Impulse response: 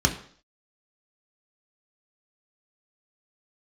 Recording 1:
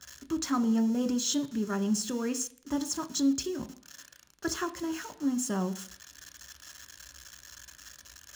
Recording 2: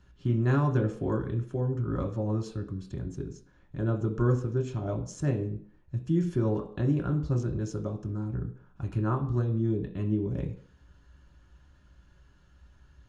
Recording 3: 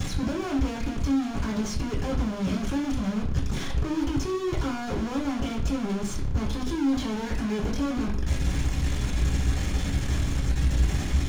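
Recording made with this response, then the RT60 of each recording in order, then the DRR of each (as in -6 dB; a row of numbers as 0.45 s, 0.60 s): 2; 0.55 s, 0.55 s, 0.55 s; 7.0 dB, 1.0 dB, -8.0 dB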